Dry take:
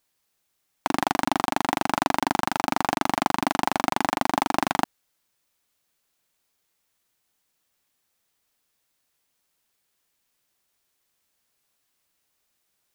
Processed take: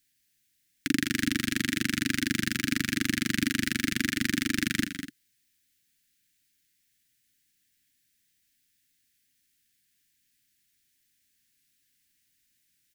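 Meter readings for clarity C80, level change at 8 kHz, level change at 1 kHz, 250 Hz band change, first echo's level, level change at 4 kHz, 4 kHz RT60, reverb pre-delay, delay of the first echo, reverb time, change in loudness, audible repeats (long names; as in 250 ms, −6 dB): no reverb audible, +2.5 dB, −24.5 dB, +0.5 dB, −10.0 dB, +1.5 dB, no reverb audible, no reverb audible, 198 ms, no reverb audible, −3.0 dB, 2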